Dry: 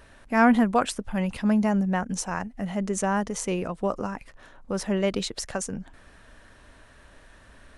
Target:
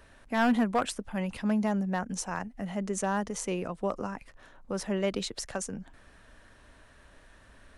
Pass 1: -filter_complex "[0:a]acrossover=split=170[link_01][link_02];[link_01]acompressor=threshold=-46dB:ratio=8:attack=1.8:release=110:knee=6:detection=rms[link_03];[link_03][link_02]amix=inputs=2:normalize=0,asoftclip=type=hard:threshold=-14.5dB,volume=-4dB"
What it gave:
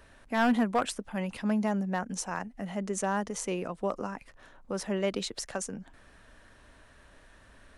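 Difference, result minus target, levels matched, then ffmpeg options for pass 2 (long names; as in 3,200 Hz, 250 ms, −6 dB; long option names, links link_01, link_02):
downward compressor: peak gain reduction +8 dB
-filter_complex "[0:a]acrossover=split=170[link_01][link_02];[link_01]acompressor=threshold=-37dB:ratio=8:attack=1.8:release=110:knee=6:detection=rms[link_03];[link_03][link_02]amix=inputs=2:normalize=0,asoftclip=type=hard:threshold=-14.5dB,volume=-4dB"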